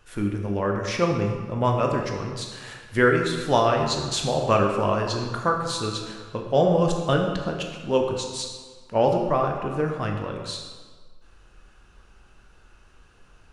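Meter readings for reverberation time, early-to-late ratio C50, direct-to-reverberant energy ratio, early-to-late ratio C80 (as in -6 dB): 1.5 s, 4.0 dB, 1.5 dB, 5.5 dB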